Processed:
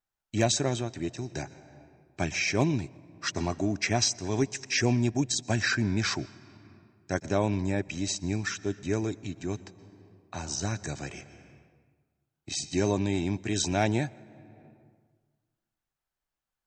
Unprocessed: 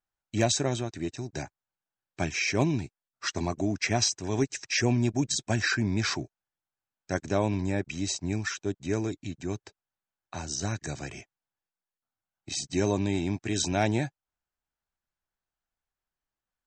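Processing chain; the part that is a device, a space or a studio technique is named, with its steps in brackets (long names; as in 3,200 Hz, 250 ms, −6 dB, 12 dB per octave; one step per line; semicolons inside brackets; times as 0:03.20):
compressed reverb return (on a send at −6.5 dB: convolution reverb RT60 1.4 s, pre-delay 115 ms + downward compressor 10 to 1, threshold −40 dBFS, peak gain reduction 20.5 dB)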